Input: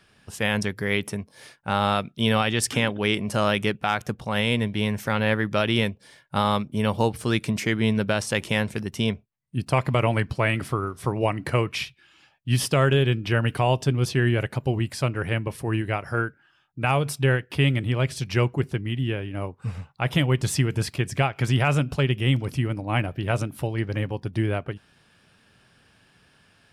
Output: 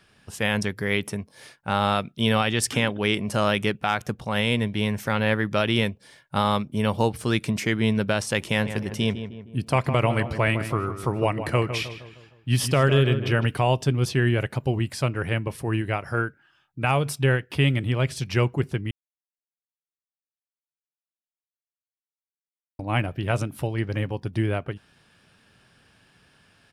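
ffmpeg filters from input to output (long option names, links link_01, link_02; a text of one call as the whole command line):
ffmpeg -i in.wav -filter_complex "[0:a]asplit=3[link_01][link_02][link_03];[link_01]afade=type=out:start_time=8.58:duration=0.02[link_04];[link_02]asplit=2[link_05][link_06];[link_06]adelay=155,lowpass=frequency=2000:poles=1,volume=-9.5dB,asplit=2[link_07][link_08];[link_08]adelay=155,lowpass=frequency=2000:poles=1,volume=0.49,asplit=2[link_09][link_10];[link_10]adelay=155,lowpass=frequency=2000:poles=1,volume=0.49,asplit=2[link_11][link_12];[link_12]adelay=155,lowpass=frequency=2000:poles=1,volume=0.49,asplit=2[link_13][link_14];[link_14]adelay=155,lowpass=frequency=2000:poles=1,volume=0.49[link_15];[link_05][link_07][link_09][link_11][link_13][link_15]amix=inputs=6:normalize=0,afade=type=in:start_time=8.58:duration=0.02,afade=type=out:start_time=13.45:duration=0.02[link_16];[link_03]afade=type=in:start_time=13.45:duration=0.02[link_17];[link_04][link_16][link_17]amix=inputs=3:normalize=0,asplit=3[link_18][link_19][link_20];[link_18]atrim=end=18.91,asetpts=PTS-STARTPTS,afade=type=out:start_time=18.906:duration=0.004:curve=hsin[link_21];[link_19]atrim=start=18.91:end=22.79,asetpts=PTS-STARTPTS,volume=0[link_22];[link_20]atrim=start=22.79,asetpts=PTS-STARTPTS,afade=type=in:duration=0.004:curve=hsin[link_23];[link_21][link_22][link_23]concat=n=3:v=0:a=1" out.wav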